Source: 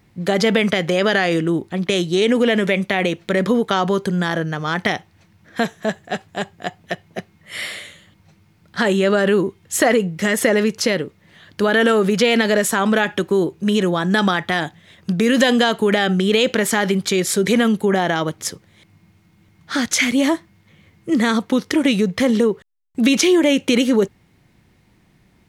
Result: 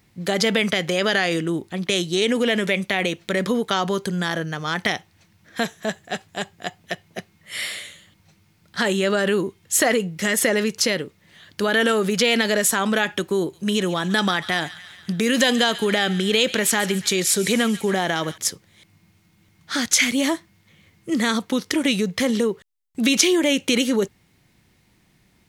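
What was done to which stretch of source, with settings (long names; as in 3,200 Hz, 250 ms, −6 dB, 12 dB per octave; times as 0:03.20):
0:13.39–0:18.38: delay with a high-pass on its return 141 ms, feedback 62%, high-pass 1,600 Hz, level −14 dB
whole clip: high-shelf EQ 2,500 Hz +8.5 dB; level −5 dB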